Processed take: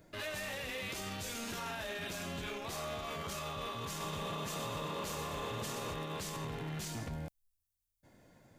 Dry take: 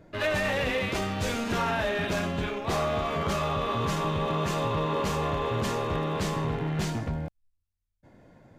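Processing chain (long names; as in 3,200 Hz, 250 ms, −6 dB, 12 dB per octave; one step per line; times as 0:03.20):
first-order pre-emphasis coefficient 0.8
brickwall limiter −37.5 dBFS, peak gain reduction 10.5 dB
0:03.88–0:05.94: echo with shifted repeats 122 ms, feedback 56%, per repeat +31 Hz, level −7 dB
level +5.5 dB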